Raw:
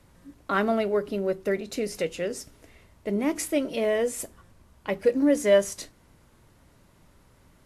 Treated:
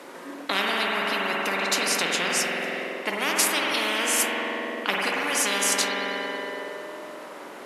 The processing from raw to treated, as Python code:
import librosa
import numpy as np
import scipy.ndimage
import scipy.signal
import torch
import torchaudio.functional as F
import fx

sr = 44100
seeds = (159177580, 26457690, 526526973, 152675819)

y = scipy.signal.sosfilt(scipy.signal.butter(4, 320.0, 'highpass', fs=sr, output='sos'), x)
y = fx.high_shelf(y, sr, hz=4200.0, db=-9.5)
y = fx.rev_spring(y, sr, rt60_s=2.3, pass_ms=(46,), chirp_ms=65, drr_db=0.5)
y = fx.spectral_comp(y, sr, ratio=10.0)